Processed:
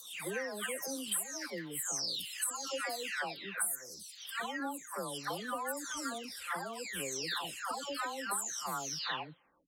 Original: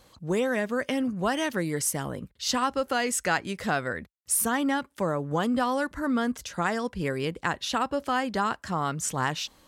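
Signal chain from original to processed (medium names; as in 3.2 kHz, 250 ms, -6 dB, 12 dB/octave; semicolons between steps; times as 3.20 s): delay that grows with frequency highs early, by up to 691 ms; RIAA curve recording; compression 16:1, threshold -25 dBFS, peak gain reduction 18 dB; trim -7 dB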